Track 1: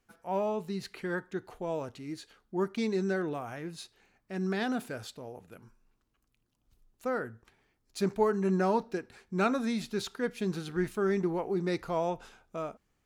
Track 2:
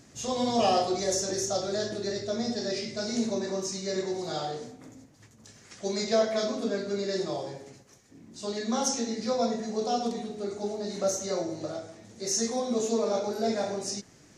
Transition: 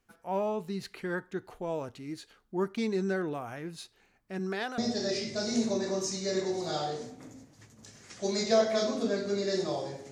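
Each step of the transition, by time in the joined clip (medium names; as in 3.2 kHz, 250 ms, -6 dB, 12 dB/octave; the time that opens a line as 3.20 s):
track 1
4.38–4.78 s: high-pass 150 Hz -> 730 Hz
4.78 s: go over to track 2 from 2.39 s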